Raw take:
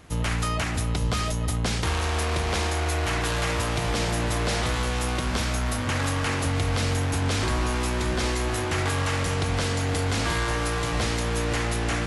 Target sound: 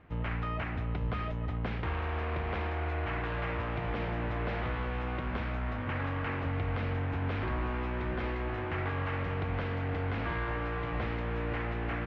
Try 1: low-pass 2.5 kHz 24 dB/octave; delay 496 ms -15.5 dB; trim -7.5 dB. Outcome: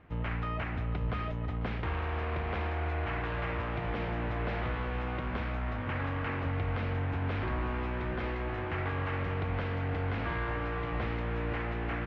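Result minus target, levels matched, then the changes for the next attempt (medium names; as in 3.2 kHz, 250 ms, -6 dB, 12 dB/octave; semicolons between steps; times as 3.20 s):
echo-to-direct +10 dB
change: delay 496 ms -25.5 dB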